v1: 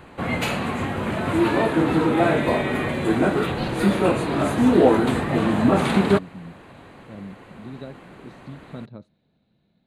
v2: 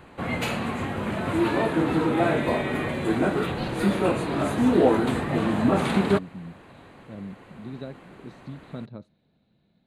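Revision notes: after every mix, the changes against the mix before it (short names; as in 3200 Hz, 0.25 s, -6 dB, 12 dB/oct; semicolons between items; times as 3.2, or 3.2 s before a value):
background -3.5 dB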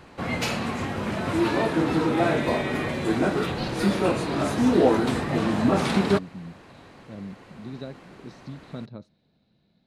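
master: add bell 5400 Hz +14 dB 0.47 oct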